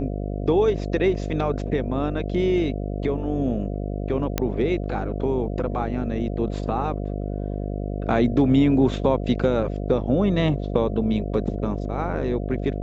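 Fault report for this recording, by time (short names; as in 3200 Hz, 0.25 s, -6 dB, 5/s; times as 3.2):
buzz 50 Hz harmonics 14 -28 dBFS
4.38 pop -7 dBFS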